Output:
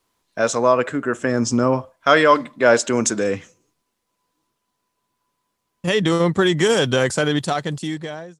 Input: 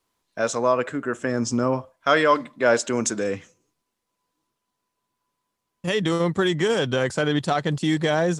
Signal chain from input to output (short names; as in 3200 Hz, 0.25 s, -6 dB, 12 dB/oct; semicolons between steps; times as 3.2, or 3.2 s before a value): ending faded out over 1.40 s; 6.57–7.88 high shelf 6600 Hz +10 dB; gain +4.5 dB